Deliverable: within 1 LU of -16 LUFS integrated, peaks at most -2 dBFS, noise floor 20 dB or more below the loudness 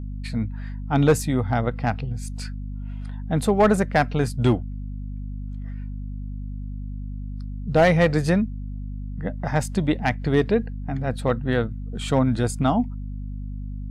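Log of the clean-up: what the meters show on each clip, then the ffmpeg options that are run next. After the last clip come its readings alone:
hum 50 Hz; harmonics up to 250 Hz; hum level -29 dBFS; loudness -23.0 LUFS; peak -9.0 dBFS; loudness target -16.0 LUFS
-> -af "bandreject=f=50:t=h:w=6,bandreject=f=100:t=h:w=6,bandreject=f=150:t=h:w=6,bandreject=f=200:t=h:w=6,bandreject=f=250:t=h:w=6"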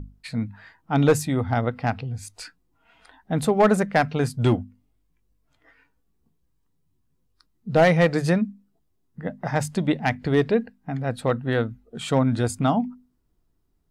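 hum none; loudness -23.5 LUFS; peak -8.5 dBFS; loudness target -16.0 LUFS
-> -af "volume=7.5dB,alimiter=limit=-2dB:level=0:latency=1"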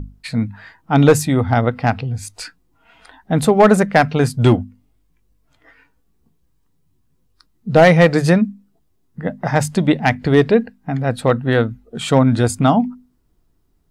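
loudness -16.0 LUFS; peak -2.0 dBFS; noise floor -62 dBFS

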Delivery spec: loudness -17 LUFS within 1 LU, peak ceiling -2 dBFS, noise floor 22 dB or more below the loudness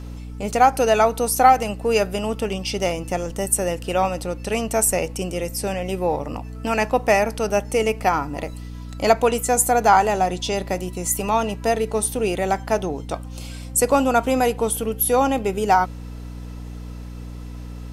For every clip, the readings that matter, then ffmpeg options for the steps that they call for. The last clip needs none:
hum 60 Hz; harmonics up to 300 Hz; hum level -31 dBFS; loudness -21.0 LUFS; peak -2.5 dBFS; loudness target -17.0 LUFS
-> -af "bandreject=f=60:t=h:w=6,bandreject=f=120:t=h:w=6,bandreject=f=180:t=h:w=6,bandreject=f=240:t=h:w=6,bandreject=f=300:t=h:w=6"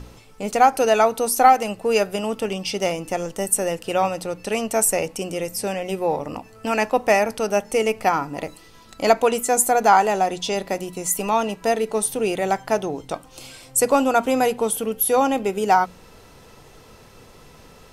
hum none; loudness -21.0 LUFS; peak -2.0 dBFS; loudness target -17.0 LUFS
-> -af "volume=4dB,alimiter=limit=-2dB:level=0:latency=1"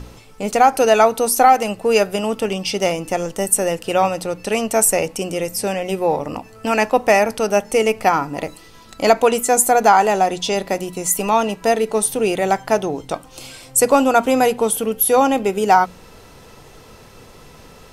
loudness -17.5 LUFS; peak -2.0 dBFS; noise floor -44 dBFS

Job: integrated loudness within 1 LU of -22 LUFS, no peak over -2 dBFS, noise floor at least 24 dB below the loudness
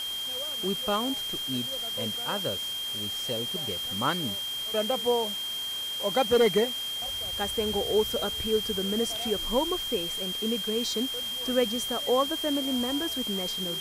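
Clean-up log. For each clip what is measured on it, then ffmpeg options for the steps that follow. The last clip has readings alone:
steady tone 3200 Hz; tone level -31 dBFS; noise floor -34 dBFS; noise floor target -52 dBFS; loudness -28.0 LUFS; peak -11.5 dBFS; loudness target -22.0 LUFS
-> -af "bandreject=f=3.2k:w=30"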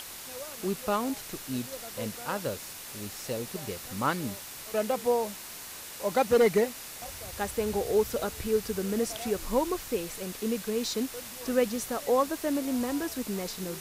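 steady tone none; noise floor -43 dBFS; noise floor target -55 dBFS
-> -af "afftdn=nr=12:nf=-43"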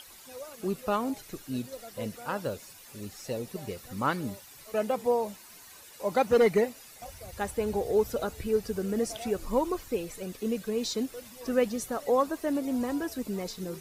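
noise floor -51 dBFS; noise floor target -55 dBFS
-> -af "afftdn=nr=6:nf=-51"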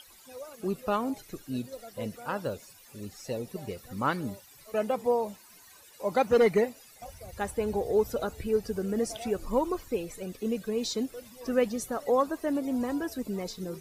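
noise floor -55 dBFS; loudness -30.5 LUFS; peak -12.5 dBFS; loudness target -22.0 LUFS
-> -af "volume=8.5dB"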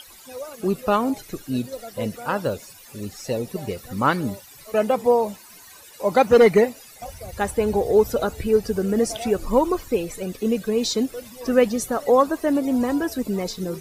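loudness -22.0 LUFS; peak -4.0 dBFS; noise floor -46 dBFS

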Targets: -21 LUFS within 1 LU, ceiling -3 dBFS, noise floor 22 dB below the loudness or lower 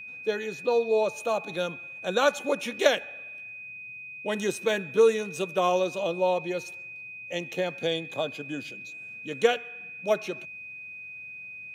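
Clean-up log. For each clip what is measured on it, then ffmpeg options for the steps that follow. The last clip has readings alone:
steady tone 2500 Hz; tone level -39 dBFS; loudness -28.0 LUFS; peak -5.5 dBFS; loudness target -21.0 LUFS
-> -af "bandreject=f=2.5k:w=30"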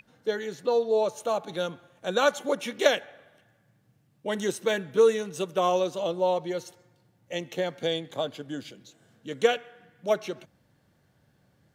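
steady tone none; loudness -28.0 LUFS; peak -6.0 dBFS; loudness target -21.0 LUFS
-> -af "volume=7dB,alimiter=limit=-3dB:level=0:latency=1"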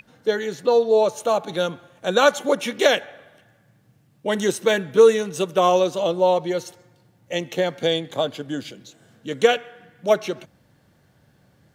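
loudness -21.0 LUFS; peak -3.0 dBFS; noise floor -60 dBFS

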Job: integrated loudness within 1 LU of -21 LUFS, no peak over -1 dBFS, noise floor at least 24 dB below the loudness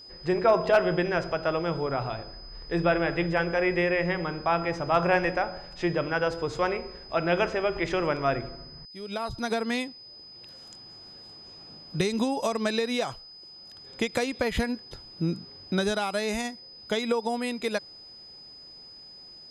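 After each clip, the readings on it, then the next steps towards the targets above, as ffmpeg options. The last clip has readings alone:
steady tone 5000 Hz; tone level -45 dBFS; loudness -27.5 LUFS; peak -11.0 dBFS; loudness target -21.0 LUFS
-> -af "bandreject=f=5k:w=30"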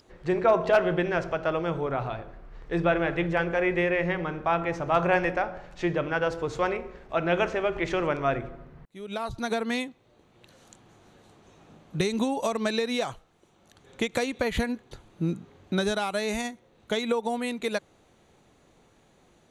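steady tone none; loudness -28.0 LUFS; peak -11.0 dBFS; loudness target -21.0 LUFS
-> -af "volume=7dB"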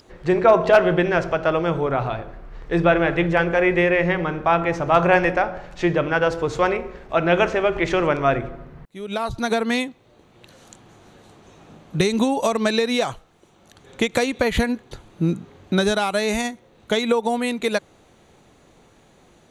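loudness -21.0 LUFS; peak -4.0 dBFS; noise floor -55 dBFS

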